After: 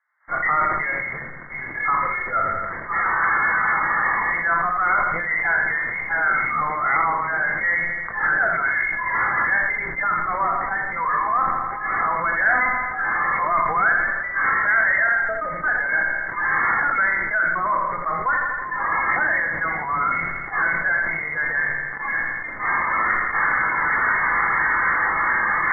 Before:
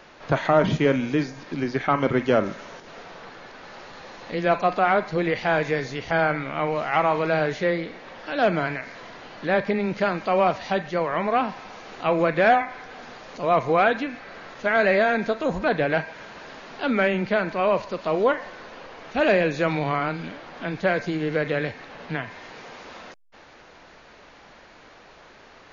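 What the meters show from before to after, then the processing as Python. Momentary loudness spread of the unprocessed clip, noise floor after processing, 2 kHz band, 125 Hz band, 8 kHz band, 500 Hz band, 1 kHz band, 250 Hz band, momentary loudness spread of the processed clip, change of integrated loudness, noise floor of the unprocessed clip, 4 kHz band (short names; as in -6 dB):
21 LU, -31 dBFS, +10.5 dB, -8.5 dB, n/a, -10.5 dB, +5.0 dB, -12.0 dB, 6 LU, +3.0 dB, -50 dBFS, under -30 dB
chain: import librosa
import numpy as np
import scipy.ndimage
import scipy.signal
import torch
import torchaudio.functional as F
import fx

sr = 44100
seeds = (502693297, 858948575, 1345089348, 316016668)

p1 = fx.rattle_buzz(x, sr, strikes_db=-34.0, level_db=-19.0)
p2 = fx.recorder_agc(p1, sr, target_db=-12.0, rise_db_per_s=38.0, max_gain_db=30)
p3 = scipy.signal.sosfilt(scipy.signal.butter(4, 1200.0, 'highpass', fs=sr, output='sos'), p2)
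p4 = fx.noise_reduce_blind(p3, sr, reduce_db=23)
p5 = fx.fuzz(p4, sr, gain_db=48.0, gate_db=-44.0)
p6 = p4 + F.gain(torch.from_numpy(p5), -9.5).numpy()
p7 = fx.brickwall_lowpass(p6, sr, high_hz=2200.0)
p8 = fx.echo_feedback(p7, sr, ms=83, feedback_pct=49, wet_db=-10.5)
p9 = fx.room_shoebox(p8, sr, seeds[0], volume_m3=240.0, walls='furnished', distance_m=0.77)
y = fx.sustainer(p9, sr, db_per_s=29.0)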